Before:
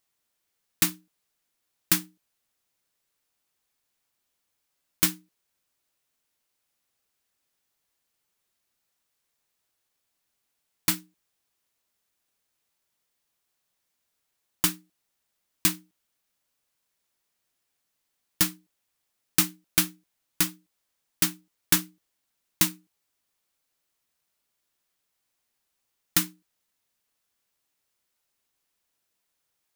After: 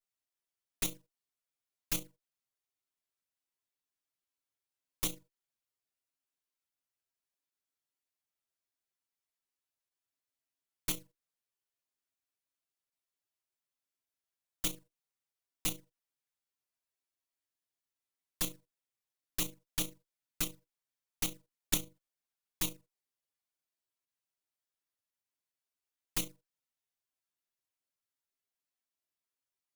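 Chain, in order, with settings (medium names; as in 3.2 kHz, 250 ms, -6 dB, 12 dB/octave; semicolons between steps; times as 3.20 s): comb filter that takes the minimum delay 7.5 ms; level held to a coarse grid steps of 9 dB; gate -51 dBFS, range -10 dB; touch-sensitive flanger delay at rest 10.6 ms, full sweep at -30 dBFS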